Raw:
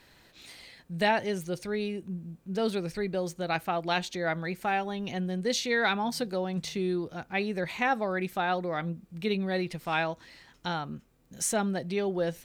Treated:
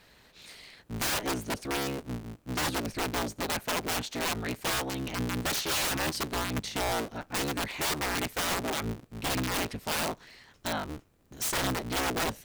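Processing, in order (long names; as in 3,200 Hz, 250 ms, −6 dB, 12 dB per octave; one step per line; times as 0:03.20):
sub-harmonics by changed cycles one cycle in 3, inverted
wrap-around overflow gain 24 dB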